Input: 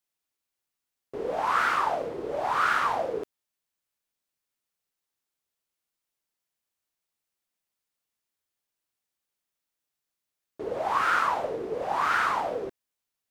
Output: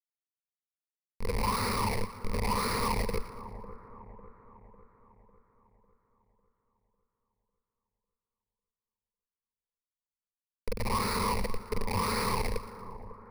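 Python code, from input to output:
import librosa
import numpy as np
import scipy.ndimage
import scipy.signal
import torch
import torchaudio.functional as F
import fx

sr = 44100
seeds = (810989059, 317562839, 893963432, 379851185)

y = fx.schmitt(x, sr, flips_db=-25.0)
y = fx.ripple_eq(y, sr, per_octave=0.89, db=15)
y = fx.echo_split(y, sr, split_hz=1500.0, low_ms=550, high_ms=116, feedback_pct=52, wet_db=-14.0)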